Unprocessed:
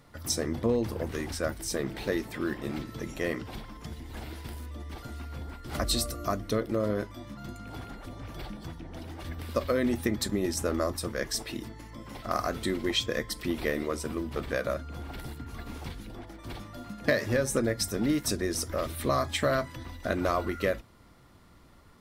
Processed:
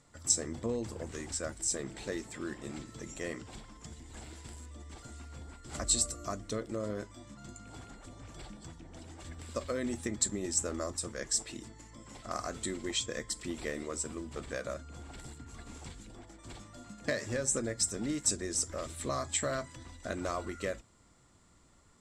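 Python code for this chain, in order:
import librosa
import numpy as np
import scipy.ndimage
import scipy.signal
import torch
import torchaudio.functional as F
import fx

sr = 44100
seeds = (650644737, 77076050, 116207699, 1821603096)

y = fx.lowpass_res(x, sr, hz=7600.0, q=9.9)
y = y * librosa.db_to_amplitude(-8.0)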